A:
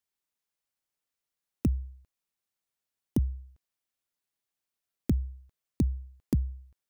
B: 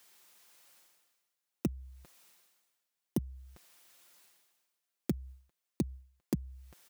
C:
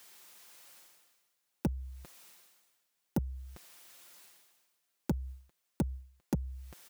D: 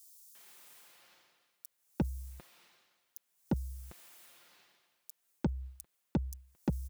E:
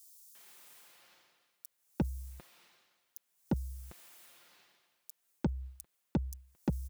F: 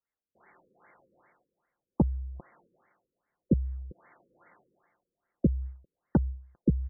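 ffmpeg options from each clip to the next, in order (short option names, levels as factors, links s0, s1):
-af "highpass=f=360:p=1,aecho=1:1:5.7:0.34,areverse,acompressor=mode=upward:threshold=0.00708:ratio=2.5,areverse,volume=1.12"
-af "asoftclip=type=tanh:threshold=0.0335,volume=2"
-filter_complex "[0:a]acrossover=split=5200[s0][s1];[s0]adelay=350[s2];[s2][s1]amix=inputs=2:normalize=0"
-af anull
-af "afftfilt=real='re*lt(b*sr/1024,510*pow(2300/510,0.5+0.5*sin(2*PI*2.5*pts/sr)))':imag='im*lt(b*sr/1024,510*pow(2300/510,0.5+0.5*sin(2*PI*2.5*pts/sr)))':win_size=1024:overlap=0.75,volume=2.51"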